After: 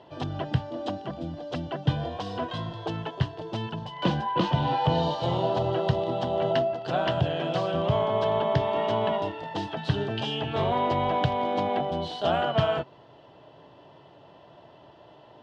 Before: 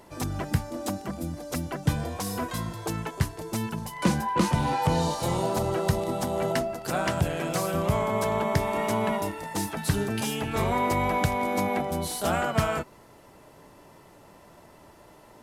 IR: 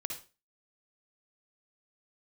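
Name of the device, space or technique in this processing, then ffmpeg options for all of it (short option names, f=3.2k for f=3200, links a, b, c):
guitar cabinet: -af "highpass=100,equalizer=f=130:t=q:w=4:g=5,equalizer=f=210:t=q:w=4:g=-7,equalizer=f=670:t=q:w=4:g=5,equalizer=f=1.3k:t=q:w=4:g=-4,equalizer=f=2.2k:t=q:w=4:g=-10,equalizer=f=3.1k:t=q:w=4:g=9,lowpass=f=4k:w=0.5412,lowpass=f=4k:w=1.3066"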